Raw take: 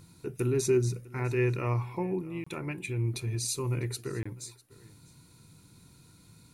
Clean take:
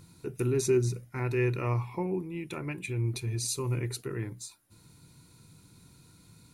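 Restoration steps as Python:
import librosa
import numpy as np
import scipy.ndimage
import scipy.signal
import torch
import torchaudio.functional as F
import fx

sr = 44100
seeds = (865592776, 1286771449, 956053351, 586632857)

y = fx.fix_interpolate(x, sr, at_s=(2.44, 4.23), length_ms=25.0)
y = fx.fix_echo_inverse(y, sr, delay_ms=650, level_db=-22.0)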